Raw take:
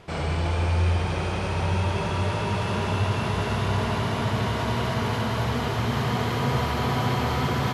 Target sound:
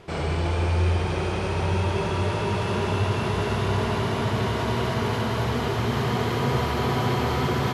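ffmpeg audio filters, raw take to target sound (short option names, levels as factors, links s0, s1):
-af "equalizer=f=380:w=3.4:g=6"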